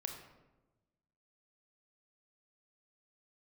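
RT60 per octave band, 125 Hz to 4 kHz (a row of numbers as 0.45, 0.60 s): 1.5, 1.4, 1.2, 1.0, 0.80, 0.60 s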